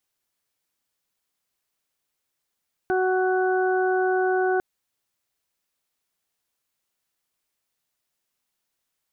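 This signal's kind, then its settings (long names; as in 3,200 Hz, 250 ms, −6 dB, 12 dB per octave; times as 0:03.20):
steady harmonic partials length 1.70 s, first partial 372 Hz, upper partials −4/−18/−7 dB, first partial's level −21 dB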